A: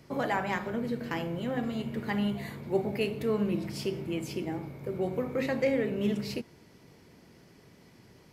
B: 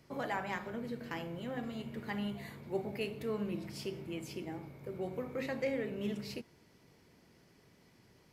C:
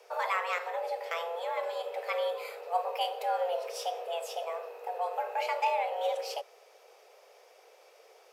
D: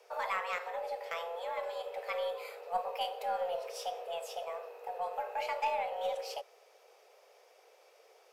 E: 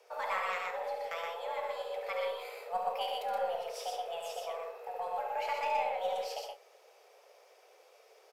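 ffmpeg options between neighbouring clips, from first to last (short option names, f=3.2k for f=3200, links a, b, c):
-af "equalizer=f=210:w=0.34:g=-2.5,volume=-6dB"
-af "afreqshift=340,volume=6dB"
-af "aeval=exprs='0.141*(cos(1*acos(clip(val(0)/0.141,-1,1)))-cos(1*PI/2))+0.00891*(cos(2*acos(clip(val(0)/0.141,-1,1)))-cos(2*PI/2))':c=same,volume=-4dB"
-af "aecho=1:1:69.97|122.4|154.5:0.501|0.708|0.251,volume=-1.5dB"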